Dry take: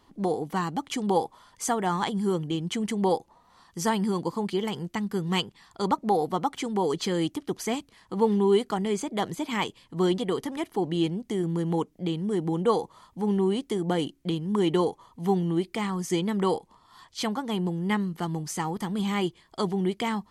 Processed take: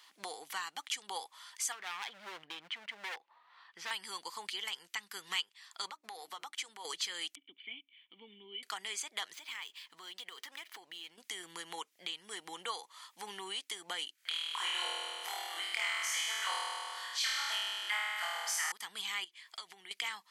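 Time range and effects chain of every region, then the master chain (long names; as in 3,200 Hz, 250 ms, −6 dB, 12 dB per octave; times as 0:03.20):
0:01.72–0:03.91: high-frequency loss of the air 400 metres + gain into a clipping stage and back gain 28.5 dB
0:05.90–0:06.85: mains-hum notches 60/120/180/240/300/360/420 Hz + downward compressor 12 to 1, threshold −31 dBFS + downward expander −37 dBFS
0:07.35–0:08.63: formant resonators in series i + one half of a high-frequency compander encoder only
0:09.33–0:11.18: running median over 5 samples + downward compressor 5 to 1, threshold −39 dBFS
0:14.15–0:18.72: high-pass filter 320 Hz 6 dB per octave + auto-filter high-pass square 9.7 Hz 640–1,500 Hz + flutter between parallel walls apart 4.3 metres, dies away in 1.5 s
0:19.24–0:19.91: parametric band 2,200 Hz +5 dB 0.61 octaves + downward compressor 10 to 1, threshold −37 dBFS
whole clip: Chebyshev high-pass filter 2,100 Hz, order 2; downward compressor 2 to 1, threshold −52 dBFS; level +9 dB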